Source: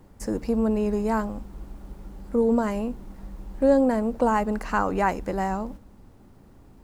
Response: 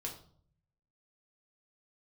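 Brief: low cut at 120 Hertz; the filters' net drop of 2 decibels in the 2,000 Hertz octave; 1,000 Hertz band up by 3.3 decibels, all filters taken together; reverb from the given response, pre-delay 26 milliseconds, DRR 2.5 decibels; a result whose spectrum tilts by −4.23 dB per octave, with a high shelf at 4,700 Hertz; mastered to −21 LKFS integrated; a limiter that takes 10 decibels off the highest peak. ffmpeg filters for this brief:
-filter_complex "[0:a]highpass=120,equalizer=frequency=1000:width_type=o:gain=5,equalizer=frequency=2000:width_type=o:gain=-6.5,highshelf=frequency=4700:gain=8,alimiter=limit=-18dB:level=0:latency=1,asplit=2[link_01][link_02];[1:a]atrim=start_sample=2205,adelay=26[link_03];[link_02][link_03]afir=irnorm=-1:irlink=0,volume=-1.5dB[link_04];[link_01][link_04]amix=inputs=2:normalize=0,volume=4dB"

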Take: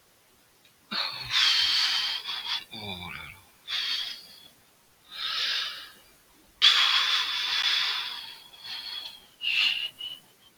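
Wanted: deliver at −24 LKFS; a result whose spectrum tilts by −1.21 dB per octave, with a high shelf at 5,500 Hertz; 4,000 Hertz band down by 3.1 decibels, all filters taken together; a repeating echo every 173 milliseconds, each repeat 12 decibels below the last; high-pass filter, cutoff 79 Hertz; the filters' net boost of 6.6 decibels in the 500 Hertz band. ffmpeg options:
ffmpeg -i in.wav -af "highpass=79,equalizer=frequency=500:width_type=o:gain=8.5,equalizer=frequency=4000:width_type=o:gain=-6.5,highshelf=frequency=5500:gain=6.5,aecho=1:1:173|346|519:0.251|0.0628|0.0157,volume=3dB" out.wav

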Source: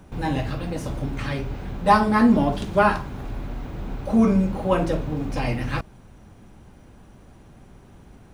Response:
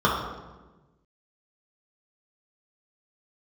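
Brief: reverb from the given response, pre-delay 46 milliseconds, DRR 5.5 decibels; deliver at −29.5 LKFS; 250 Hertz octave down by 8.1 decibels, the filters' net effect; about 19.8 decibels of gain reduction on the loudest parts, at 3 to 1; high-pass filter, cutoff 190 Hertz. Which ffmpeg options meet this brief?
-filter_complex "[0:a]highpass=190,equalizer=frequency=250:width_type=o:gain=-7.5,acompressor=threshold=-39dB:ratio=3,asplit=2[link_01][link_02];[1:a]atrim=start_sample=2205,adelay=46[link_03];[link_02][link_03]afir=irnorm=-1:irlink=0,volume=-25dB[link_04];[link_01][link_04]amix=inputs=2:normalize=0,volume=9dB"

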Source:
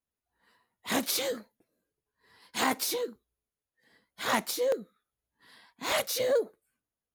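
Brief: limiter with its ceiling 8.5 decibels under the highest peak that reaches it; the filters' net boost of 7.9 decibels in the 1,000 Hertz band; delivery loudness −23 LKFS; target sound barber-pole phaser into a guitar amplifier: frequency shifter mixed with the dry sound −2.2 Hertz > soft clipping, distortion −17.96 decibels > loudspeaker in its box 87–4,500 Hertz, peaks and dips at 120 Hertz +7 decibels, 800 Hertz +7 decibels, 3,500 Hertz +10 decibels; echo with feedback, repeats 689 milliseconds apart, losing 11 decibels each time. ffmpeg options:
ffmpeg -i in.wav -filter_complex "[0:a]equalizer=frequency=1000:width_type=o:gain=5,alimiter=limit=-19dB:level=0:latency=1,aecho=1:1:689|1378|2067:0.282|0.0789|0.0221,asplit=2[link_01][link_02];[link_02]afreqshift=-2.2[link_03];[link_01][link_03]amix=inputs=2:normalize=1,asoftclip=threshold=-23.5dB,highpass=87,equalizer=frequency=120:width_type=q:width=4:gain=7,equalizer=frequency=800:width_type=q:width=4:gain=7,equalizer=frequency=3500:width_type=q:width=4:gain=10,lowpass=frequency=4500:width=0.5412,lowpass=frequency=4500:width=1.3066,volume=12dB" out.wav

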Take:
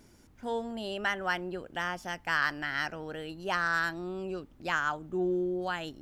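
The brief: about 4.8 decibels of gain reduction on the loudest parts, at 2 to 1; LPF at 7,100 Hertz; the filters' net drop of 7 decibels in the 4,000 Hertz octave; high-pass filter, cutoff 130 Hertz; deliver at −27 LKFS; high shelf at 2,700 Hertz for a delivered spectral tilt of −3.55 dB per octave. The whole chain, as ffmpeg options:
ffmpeg -i in.wav -af "highpass=130,lowpass=7100,highshelf=frequency=2700:gain=-5.5,equalizer=frequency=4000:width_type=o:gain=-5.5,acompressor=threshold=-35dB:ratio=2,volume=10.5dB" out.wav

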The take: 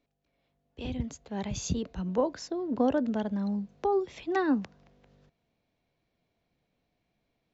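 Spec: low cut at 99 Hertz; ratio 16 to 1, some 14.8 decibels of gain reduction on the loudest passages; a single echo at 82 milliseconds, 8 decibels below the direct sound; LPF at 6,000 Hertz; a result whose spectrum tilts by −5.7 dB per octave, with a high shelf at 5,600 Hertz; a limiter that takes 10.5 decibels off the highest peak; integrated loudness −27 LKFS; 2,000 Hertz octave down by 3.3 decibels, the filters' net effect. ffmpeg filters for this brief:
ffmpeg -i in.wav -af "highpass=99,lowpass=6000,equalizer=frequency=2000:width_type=o:gain=-3.5,highshelf=frequency=5600:gain=-7.5,acompressor=threshold=-36dB:ratio=16,alimiter=level_in=13.5dB:limit=-24dB:level=0:latency=1,volume=-13.5dB,aecho=1:1:82:0.398,volume=18dB" out.wav

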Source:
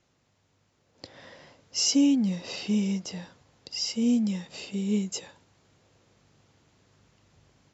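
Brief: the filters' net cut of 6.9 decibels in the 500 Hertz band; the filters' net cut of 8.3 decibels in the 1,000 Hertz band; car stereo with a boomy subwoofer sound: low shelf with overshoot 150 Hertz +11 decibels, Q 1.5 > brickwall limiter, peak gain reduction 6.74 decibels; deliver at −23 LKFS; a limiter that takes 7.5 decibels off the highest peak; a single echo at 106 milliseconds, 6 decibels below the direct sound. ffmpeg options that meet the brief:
ffmpeg -i in.wav -af "equalizer=frequency=500:width_type=o:gain=-5.5,equalizer=frequency=1000:width_type=o:gain=-8.5,alimiter=limit=-22dB:level=0:latency=1,lowshelf=frequency=150:width_type=q:width=1.5:gain=11,aecho=1:1:106:0.501,volume=11.5dB,alimiter=limit=-15dB:level=0:latency=1" out.wav

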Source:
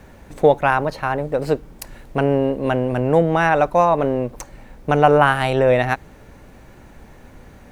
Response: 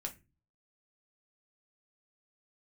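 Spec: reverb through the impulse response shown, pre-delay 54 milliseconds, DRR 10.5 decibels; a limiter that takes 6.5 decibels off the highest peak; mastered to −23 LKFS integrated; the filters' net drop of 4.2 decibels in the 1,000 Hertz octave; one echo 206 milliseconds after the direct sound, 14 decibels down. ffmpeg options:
-filter_complex "[0:a]equalizer=frequency=1000:width_type=o:gain=-6,alimiter=limit=-10dB:level=0:latency=1,aecho=1:1:206:0.2,asplit=2[link_01][link_02];[1:a]atrim=start_sample=2205,adelay=54[link_03];[link_02][link_03]afir=irnorm=-1:irlink=0,volume=-9dB[link_04];[link_01][link_04]amix=inputs=2:normalize=0,volume=-2dB"

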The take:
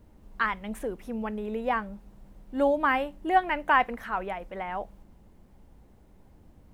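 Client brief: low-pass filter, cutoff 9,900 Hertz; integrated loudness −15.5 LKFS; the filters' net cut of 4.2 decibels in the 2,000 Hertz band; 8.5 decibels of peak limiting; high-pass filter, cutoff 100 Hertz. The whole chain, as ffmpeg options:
ffmpeg -i in.wav -af "highpass=100,lowpass=9900,equalizer=frequency=2000:width_type=o:gain=-5.5,volume=17dB,alimiter=limit=-3dB:level=0:latency=1" out.wav

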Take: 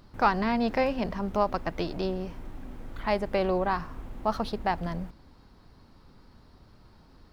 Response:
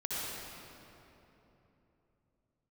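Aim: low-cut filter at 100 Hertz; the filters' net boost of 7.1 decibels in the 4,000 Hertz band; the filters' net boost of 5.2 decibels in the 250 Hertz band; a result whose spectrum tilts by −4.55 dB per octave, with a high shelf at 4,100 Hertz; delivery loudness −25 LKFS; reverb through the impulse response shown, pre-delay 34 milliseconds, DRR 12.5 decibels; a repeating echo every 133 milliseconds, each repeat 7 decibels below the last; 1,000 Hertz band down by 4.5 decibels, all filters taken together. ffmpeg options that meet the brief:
-filter_complex "[0:a]highpass=100,equalizer=frequency=250:width_type=o:gain=7,equalizer=frequency=1000:width_type=o:gain=-7,equalizer=frequency=4000:width_type=o:gain=6.5,highshelf=frequency=4100:gain=4.5,aecho=1:1:133|266|399|532|665:0.447|0.201|0.0905|0.0407|0.0183,asplit=2[link_01][link_02];[1:a]atrim=start_sample=2205,adelay=34[link_03];[link_02][link_03]afir=irnorm=-1:irlink=0,volume=-17.5dB[link_04];[link_01][link_04]amix=inputs=2:normalize=0,volume=2dB"

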